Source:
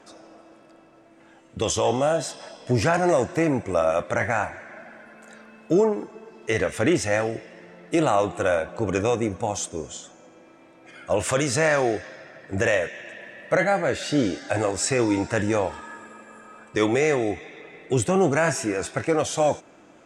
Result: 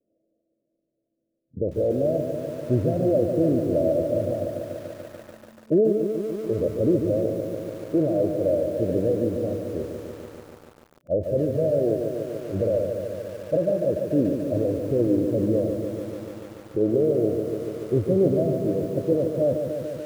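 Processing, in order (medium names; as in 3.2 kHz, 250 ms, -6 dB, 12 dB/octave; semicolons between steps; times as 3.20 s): steep low-pass 640 Hz 96 dB/octave; spectral noise reduction 24 dB; bit-crushed delay 145 ms, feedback 80%, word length 8-bit, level -6.5 dB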